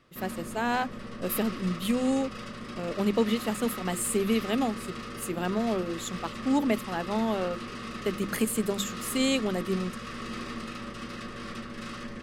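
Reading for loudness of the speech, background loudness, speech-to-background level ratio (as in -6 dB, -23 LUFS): -30.0 LUFS, -38.5 LUFS, 8.5 dB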